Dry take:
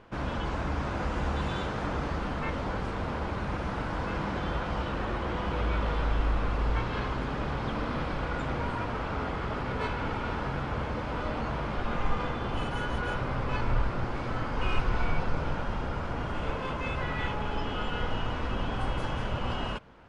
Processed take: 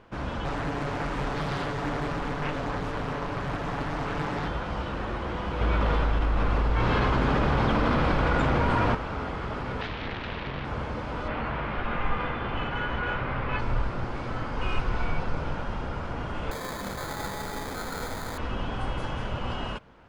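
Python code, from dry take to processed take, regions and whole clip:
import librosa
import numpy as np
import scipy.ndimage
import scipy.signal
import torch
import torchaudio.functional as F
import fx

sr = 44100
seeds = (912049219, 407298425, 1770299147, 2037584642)

y = fx.chain(x, sr, fx.comb(ms=7.0, depth=0.88),
    fx.doppler_dist(depth_ms=0.75), at=(0.44, 4.48))
y = fx.chain(y, sr, fx.high_shelf(hz=5600.0, db=-5.0),
    fx.env_flatten(amount_pct=100), at=(5.61, 8.95))
y = fx.chain(y, sr, fx.self_delay(depth_ms=0.87),
    fx.lowpass(hz=3600.0, slope=24), at=(9.81, 10.65))
y = fx.chain(y, sr, fx.lowpass(hz=3100.0, slope=12),
    fx.peak_eq(hz=2200.0, db=6.5, octaves=1.8), at=(11.28, 13.59))
y = fx.chain(y, sr, fx.low_shelf(hz=170.0, db=-8.0),
    fx.sample_hold(seeds[0], rate_hz=2800.0, jitter_pct=0), at=(16.51, 18.38))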